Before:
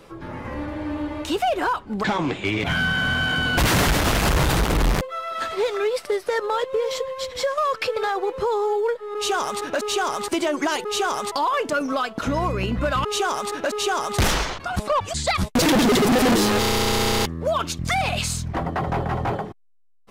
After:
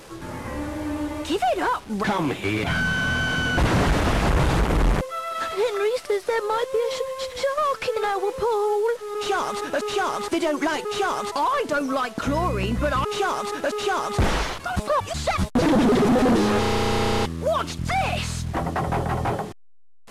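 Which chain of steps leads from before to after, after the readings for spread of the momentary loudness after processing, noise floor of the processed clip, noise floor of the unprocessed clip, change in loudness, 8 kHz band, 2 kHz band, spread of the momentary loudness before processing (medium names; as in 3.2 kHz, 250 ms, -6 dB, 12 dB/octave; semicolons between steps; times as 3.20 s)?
7 LU, -41 dBFS, -41 dBFS, -1.0 dB, -6.5 dB, -2.0 dB, 8 LU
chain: one-bit delta coder 64 kbps, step -38 dBFS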